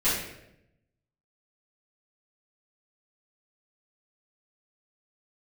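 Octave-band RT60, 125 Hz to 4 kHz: 1.2 s, 1.1 s, 0.95 s, 0.75 s, 0.75 s, 0.60 s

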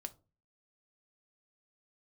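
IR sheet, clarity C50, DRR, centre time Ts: 19.5 dB, 8.5 dB, 3 ms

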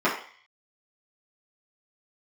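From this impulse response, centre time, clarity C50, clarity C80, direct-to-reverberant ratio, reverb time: 29 ms, 6.5 dB, 10.0 dB, -10.0 dB, 0.45 s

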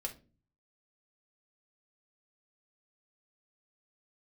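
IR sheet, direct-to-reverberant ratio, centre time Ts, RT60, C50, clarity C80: 1.5 dB, 9 ms, 0.35 s, 13.5 dB, 21.5 dB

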